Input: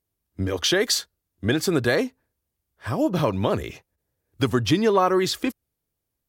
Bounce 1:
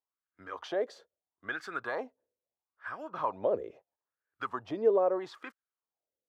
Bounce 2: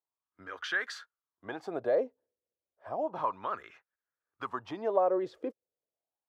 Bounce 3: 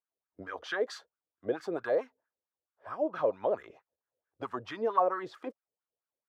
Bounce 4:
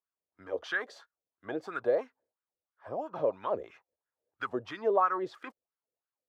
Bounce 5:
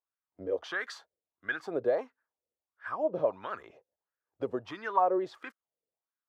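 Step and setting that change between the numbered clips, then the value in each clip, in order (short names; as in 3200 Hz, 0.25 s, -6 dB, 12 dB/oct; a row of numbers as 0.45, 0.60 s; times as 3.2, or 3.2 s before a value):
wah, rate: 0.76, 0.32, 4.5, 3, 1.5 Hz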